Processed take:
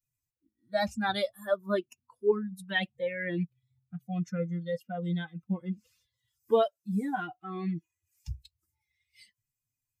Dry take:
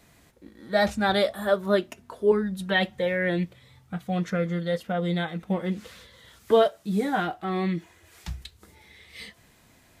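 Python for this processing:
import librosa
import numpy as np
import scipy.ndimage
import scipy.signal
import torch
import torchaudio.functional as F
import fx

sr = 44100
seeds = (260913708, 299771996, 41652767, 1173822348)

y = fx.bin_expand(x, sr, power=2.0)
y = fx.peak_eq(y, sr, hz=110.0, db=5.0, octaves=1.1)
y = y * librosa.db_to_amplitude(-3.0)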